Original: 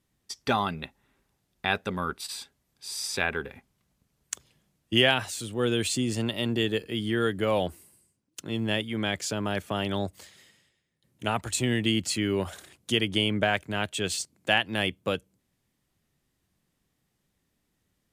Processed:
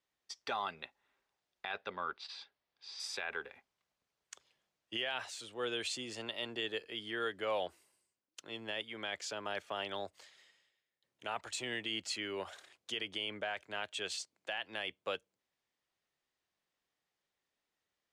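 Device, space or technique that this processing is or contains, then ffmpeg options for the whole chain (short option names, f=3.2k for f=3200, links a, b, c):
DJ mixer with the lows and highs turned down: -filter_complex "[0:a]asettb=1/sr,asplit=3[a][b][c];[a]atrim=end=1.714[d];[b]atrim=start=1.71:end=3,asetpts=PTS-STARTPTS,afade=t=in:d=0.004:c=qsin,afade=t=out:st=1.286:d=0.004:c=qsin,lowpass=f=5k:w=0.5412,lowpass=f=5k:w=1.3066[e];[c]atrim=start=2.996[f];[d][e]acrossfade=d=0.004:c1=hsin:c2=qsin[g];[g][f]acrossfade=d=0.004:c1=qsin:c2=hsin,acrossover=split=430 6800:gain=0.112 1 0.158[h][i][j];[h][i][j]amix=inputs=3:normalize=0,alimiter=limit=-19.5dB:level=0:latency=1:release=29,volume=-6.5dB"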